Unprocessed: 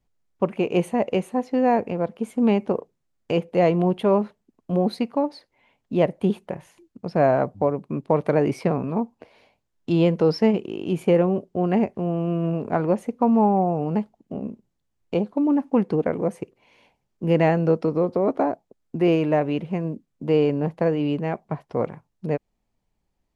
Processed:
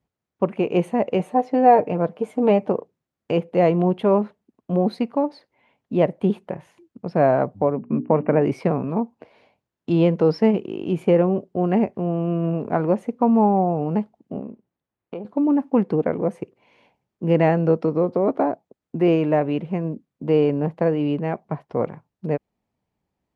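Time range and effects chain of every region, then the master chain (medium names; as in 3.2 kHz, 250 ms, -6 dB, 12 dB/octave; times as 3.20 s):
1.19–2.70 s: peaking EQ 660 Hz +6.5 dB 0.86 oct + comb 6.6 ms, depth 53%
7.76–8.42 s: brick-wall FIR low-pass 3 kHz + peaking EQ 240 Hz +12.5 dB 0.3 oct + hum notches 60/120/180/240/300/360/420 Hz
14.41–15.25 s: tone controls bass -6 dB, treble -13 dB + compression, threshold -29 dBFS
whole clip: high-pass 82 Hz; treble shelf 4.1 kHz -10.5 dB; trim +1.5 dB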